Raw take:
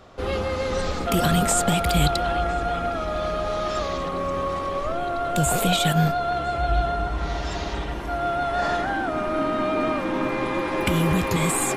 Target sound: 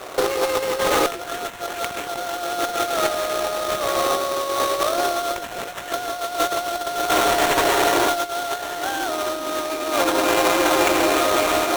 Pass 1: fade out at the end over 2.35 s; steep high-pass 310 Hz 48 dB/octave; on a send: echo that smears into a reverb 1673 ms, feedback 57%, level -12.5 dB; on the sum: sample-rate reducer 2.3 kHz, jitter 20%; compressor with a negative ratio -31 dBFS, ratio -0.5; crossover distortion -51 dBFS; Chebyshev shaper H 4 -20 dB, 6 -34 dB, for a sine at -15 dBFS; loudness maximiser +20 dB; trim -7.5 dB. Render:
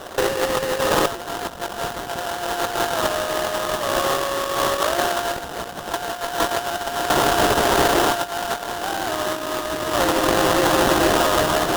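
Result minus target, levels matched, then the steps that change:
sample-rate reducer: distortion +9 dB
change: sample-rate reducer 4.9 kHz, jitter 20%

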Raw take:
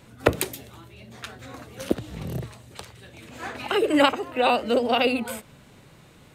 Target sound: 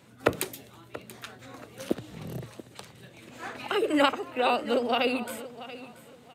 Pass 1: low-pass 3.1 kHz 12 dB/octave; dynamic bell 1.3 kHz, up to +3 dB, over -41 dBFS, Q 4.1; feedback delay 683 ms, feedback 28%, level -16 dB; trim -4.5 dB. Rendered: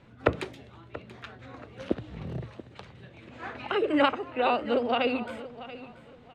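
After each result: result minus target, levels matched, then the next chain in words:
125 Hz band +3.5 dB; 4 kHz band -2.5 dB
low-pass 3.1 kHz 12 dB/octave; dynamic bell 1.3 kHz, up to +3 dB, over -41 dBFS, Q 4.1; high-pass 120 Hz 12 dB/octave; feedback delay 683 ms, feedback 28%, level -16 dB; trim -4.5 dB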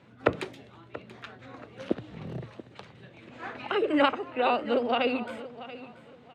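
4 kHz band -2.5 dB
dynamic bell 1.3 kHz, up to +3 dB, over -41 dBFS, Q 4.1; high-pass 120 Hz 12 dB/octave; feedback delay 683 ms, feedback 28%, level -16 dB; trim -4.5 dB

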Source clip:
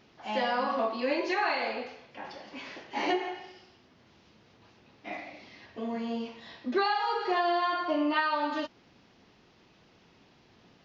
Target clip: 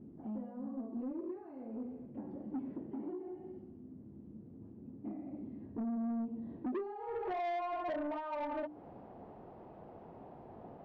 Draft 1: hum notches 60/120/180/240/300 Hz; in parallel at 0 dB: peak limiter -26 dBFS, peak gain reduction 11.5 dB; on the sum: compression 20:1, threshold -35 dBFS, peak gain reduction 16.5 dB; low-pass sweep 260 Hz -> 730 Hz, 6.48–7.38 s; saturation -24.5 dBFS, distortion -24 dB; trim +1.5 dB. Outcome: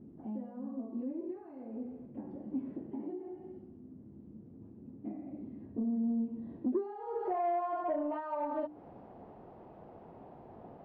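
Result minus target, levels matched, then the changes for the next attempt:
saturation: distortion -14 dB
change: saturation -35 dBFS, distortion -11 dB

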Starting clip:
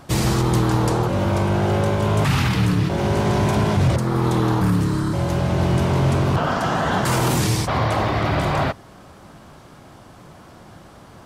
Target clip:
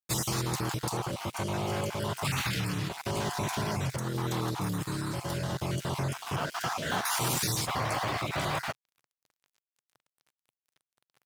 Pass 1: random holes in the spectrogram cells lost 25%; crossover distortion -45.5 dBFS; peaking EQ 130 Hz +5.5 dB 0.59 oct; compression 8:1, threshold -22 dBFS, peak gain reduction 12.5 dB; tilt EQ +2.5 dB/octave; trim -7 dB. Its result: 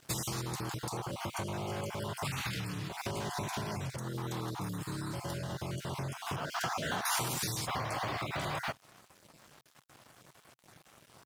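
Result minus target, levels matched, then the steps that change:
compression: peak gain reduction +7.5 dB; crossover distortion: distortion -8 dB
change: crossover distortion -36 dBFS; change: compression 8:1, threshold -14 dBFS, peak gain reduction 5.5 dB

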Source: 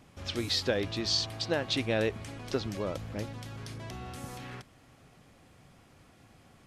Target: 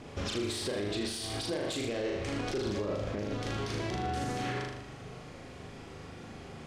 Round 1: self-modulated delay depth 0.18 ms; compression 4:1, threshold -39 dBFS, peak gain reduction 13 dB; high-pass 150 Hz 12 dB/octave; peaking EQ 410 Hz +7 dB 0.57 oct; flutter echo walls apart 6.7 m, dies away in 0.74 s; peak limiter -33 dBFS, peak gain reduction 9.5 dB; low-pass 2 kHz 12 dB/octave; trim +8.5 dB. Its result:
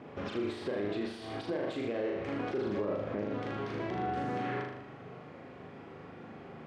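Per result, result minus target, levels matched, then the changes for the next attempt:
8 kHz band -19.0 dB; 125 Hz band -4.0 dB
change: low-pass 7.2 kHz 12 dB/octave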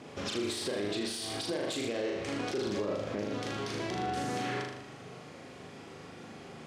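125 Hz band -5.0 dB
remove: high-pass 150 Hz 12 dB/octave

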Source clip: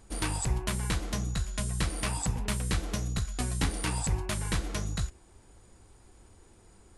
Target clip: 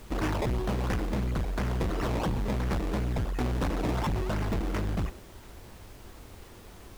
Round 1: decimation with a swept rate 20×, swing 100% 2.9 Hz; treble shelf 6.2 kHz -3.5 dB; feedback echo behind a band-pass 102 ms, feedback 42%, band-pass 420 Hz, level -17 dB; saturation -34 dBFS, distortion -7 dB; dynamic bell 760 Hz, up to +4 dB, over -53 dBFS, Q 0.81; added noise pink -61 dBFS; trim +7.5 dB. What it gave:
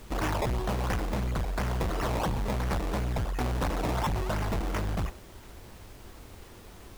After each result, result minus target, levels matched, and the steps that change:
8 kHz band +3.5 dB; 1 kHz band +3.0 dB
change: treble shelf 6.2 kHz -12 dB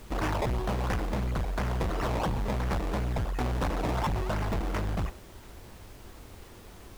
1 kHz band +3.0 dB
change: dynamic bell 310 Hz, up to +4 dB, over -53 dBFS, Q 0.81

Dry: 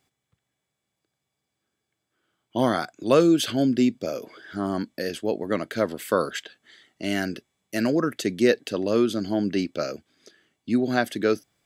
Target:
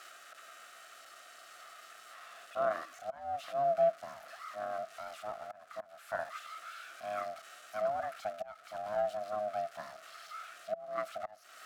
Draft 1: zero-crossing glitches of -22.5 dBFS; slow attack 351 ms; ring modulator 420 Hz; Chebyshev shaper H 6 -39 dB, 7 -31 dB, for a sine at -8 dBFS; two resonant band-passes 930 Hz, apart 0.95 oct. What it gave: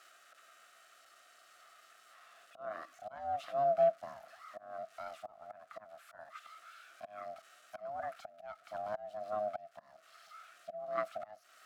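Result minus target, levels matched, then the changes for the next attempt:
zero-crossing glitches: distortion -7 dB
change: zero-crossing glitches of -15 dBFS

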